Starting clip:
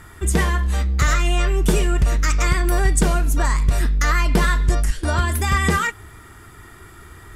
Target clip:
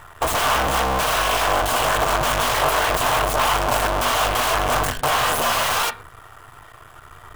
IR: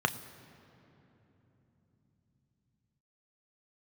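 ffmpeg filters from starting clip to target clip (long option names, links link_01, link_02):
-filter_complex "[0:a]acrusher=bits=6:dc=4:mix=0:aa=0.000001,aeval=exprs='(mod(8.41*val(0)+1,2)-1)/8.41':channel_layout=same,asplit=2[link_01][link_02];[link_02]highpass=200,equalizer=frequency=290:width_type=q:width=4:gain=-6,equalizer=frequency=660:width_type=q:width=4:gain=9,equalizer=frequency=1100:width_type=q:width=4:gain=7,equalizer=frequency=1500:width_type=q:width=4:gain=7,equalizer=frequency=2800:width_type=q:width=4:gain=-3,lowpass=frequency=3500:width=0.5412,lowpass=frequency=3500:width=1.3066[link_03];[1:a]atrim=start_sample=2205,atrim=end_sample=6174[link_04];[link_03][link_04]afir=irnorm=-1:irlink=0,volume=-6.5dB[link_05];[link_01][link_05]amix=inputs=2:normalize=0,volume=-2dB"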